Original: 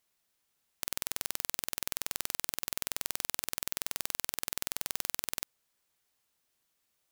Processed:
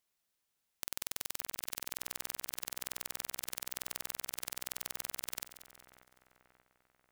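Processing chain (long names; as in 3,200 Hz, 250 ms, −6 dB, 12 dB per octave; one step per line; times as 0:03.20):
echo with a time of its own for lows and highs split 2,100 Hz, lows 585 ms, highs 186 ms, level −13.5 dB
level −5 dB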